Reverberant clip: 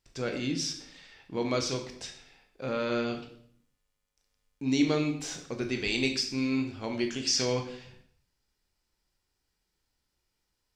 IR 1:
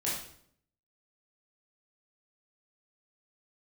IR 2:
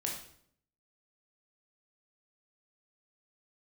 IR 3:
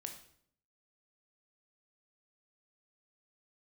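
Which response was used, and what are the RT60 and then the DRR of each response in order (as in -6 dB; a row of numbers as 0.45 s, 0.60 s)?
3; 0.65 s, 0.65 s, 0.65 s; -7.5 dB, -1.5 dB, 4.0 dB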